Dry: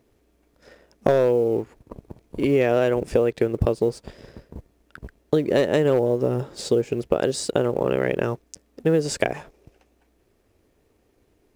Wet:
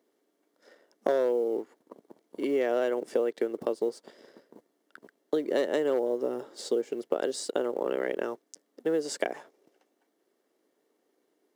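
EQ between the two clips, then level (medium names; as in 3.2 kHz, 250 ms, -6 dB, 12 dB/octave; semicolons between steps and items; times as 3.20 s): high-pass 260 Hz 24 dB/octave; band-stop 2.5 kHz, Q 6.3; -7.0 dB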